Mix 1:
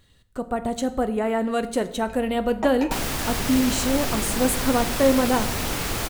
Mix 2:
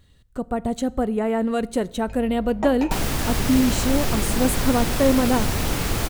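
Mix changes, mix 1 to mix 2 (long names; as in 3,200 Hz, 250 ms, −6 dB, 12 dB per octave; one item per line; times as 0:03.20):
speech: send −11.0 dB
master: add low-shelf EQ 340 Hz +6.5 dB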